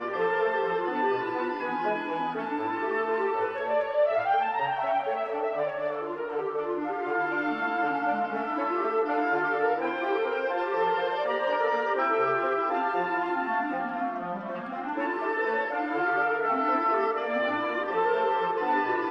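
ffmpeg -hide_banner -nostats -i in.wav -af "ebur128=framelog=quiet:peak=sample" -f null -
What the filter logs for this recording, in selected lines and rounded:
Integrated loudness:
  I:         -27.5 LUFS
  Threshold: -37.5 LUFS
Loudness range:
  LRA:         2.7 LU
  Threshold: -47.6 LUFS
  LRA low:   -29.1 LUFS
  LRA high:  -26.4 LUFS
Sample peak:
  Peak:      -14.0 dBFS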